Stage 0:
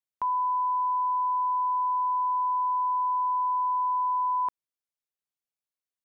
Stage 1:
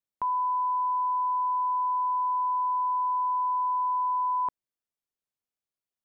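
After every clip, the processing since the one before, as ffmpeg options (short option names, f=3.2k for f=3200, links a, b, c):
-af "tiltshelf=f=850:g=3.5"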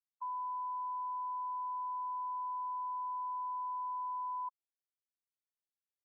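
-filter_complex "[0:a]afftfilt=real='re*gte(hypot(re,im),0.178)':imag='im*gte(hypot(re,im),0.178)':win_size=1024:overlap=0.75,acrossover=split=1000[a][b];[a]aeval=exprs='val(0)*(1-1/2+1/2*cos(2*PI*6.8*n/s))':c=same[c];[b]aeval=exprs='val(0)*(1-1/2-1/2*cos(2*PI*6.8*n/s))':c=same[d];[c][d]amix=inputs=2:normalize=0,volume=-5.5dB"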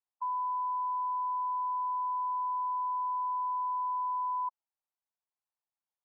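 -af "bandpass=f=870:t=q:w=2.6:csg=0,volume=8dB"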